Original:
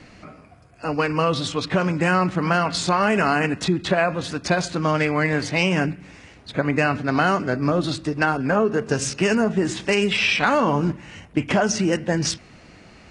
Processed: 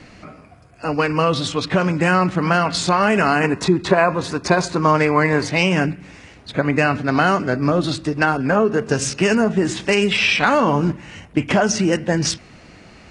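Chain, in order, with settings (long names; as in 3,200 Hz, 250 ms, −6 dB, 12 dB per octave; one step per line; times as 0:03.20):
0:03.43–0:05.48: thirty-one-band graphic EQ 400 Hz +7 dB, 1,000 Hz +9 dB, 3,150 Hz −7 dB
level +3 dB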